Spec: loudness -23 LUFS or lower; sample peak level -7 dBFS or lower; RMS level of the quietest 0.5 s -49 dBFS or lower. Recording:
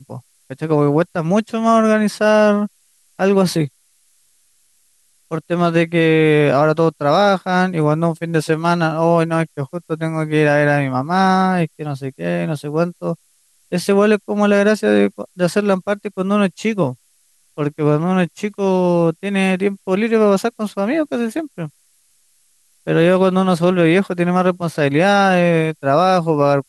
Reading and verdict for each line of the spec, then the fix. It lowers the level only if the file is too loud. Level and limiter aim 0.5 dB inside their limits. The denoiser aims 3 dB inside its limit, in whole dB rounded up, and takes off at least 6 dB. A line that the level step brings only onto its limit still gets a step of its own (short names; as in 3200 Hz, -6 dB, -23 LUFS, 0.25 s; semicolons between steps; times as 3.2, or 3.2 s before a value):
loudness -16.5 LUFS: fail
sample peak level -3.0 dBFS: fail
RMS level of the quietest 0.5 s -58 dBFS: OK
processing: gain -7 dB